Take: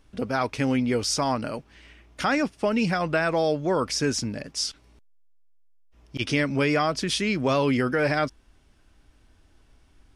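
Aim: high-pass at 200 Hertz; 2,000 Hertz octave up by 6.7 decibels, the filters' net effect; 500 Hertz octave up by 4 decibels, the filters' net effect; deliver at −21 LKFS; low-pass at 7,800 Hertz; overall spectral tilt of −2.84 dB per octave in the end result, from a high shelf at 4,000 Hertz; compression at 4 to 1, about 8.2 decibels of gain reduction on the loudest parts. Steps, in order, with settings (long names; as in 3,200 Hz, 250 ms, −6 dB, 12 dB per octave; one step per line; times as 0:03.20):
high-pass filter 200 Hz
low-pass filter 7,800 Hz
parametric band 500 Hz +4.5 dB
parametric band 2,000 Hz +7 dB
high-shelf EQ 4,000 Hz +6 dB
downward compressor 4 to 1, threshold −25 dBFS
level +7.5 dB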